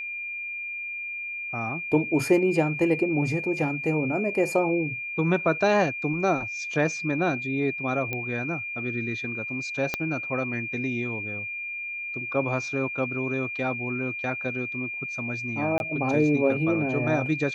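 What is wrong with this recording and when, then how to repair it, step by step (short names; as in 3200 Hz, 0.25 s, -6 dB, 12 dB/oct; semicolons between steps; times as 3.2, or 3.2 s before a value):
tone 2400 Hz -31 dBFS
8.13 pop -16 dBFS
9.94 pop -11 dBFS
15.78–15.8 gap 21 ms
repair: de-click; notch 2400 Hz, Q 30; interpolate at 15.78, 21 ms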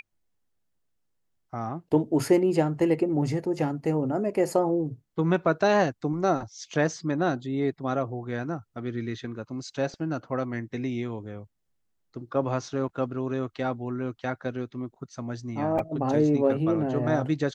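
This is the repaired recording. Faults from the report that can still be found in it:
9.94 pop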